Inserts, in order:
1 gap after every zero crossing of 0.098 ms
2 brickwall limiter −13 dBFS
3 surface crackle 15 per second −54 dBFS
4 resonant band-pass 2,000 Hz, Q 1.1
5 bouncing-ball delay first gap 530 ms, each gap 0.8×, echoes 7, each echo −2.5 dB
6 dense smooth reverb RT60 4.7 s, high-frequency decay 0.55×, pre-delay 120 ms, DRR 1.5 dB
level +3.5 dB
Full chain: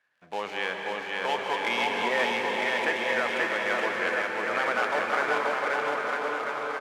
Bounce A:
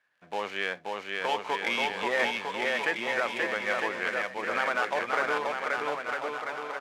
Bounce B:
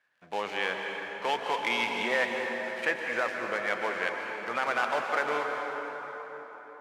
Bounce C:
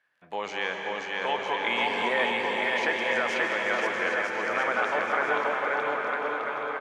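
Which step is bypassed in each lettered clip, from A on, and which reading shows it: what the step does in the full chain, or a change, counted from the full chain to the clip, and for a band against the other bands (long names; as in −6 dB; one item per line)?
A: 6, change in integrated loudness −2.5 LU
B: 5, echo-to-direct ratio 4.5 dB to −1.5 dB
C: 1, distortion level −18 dB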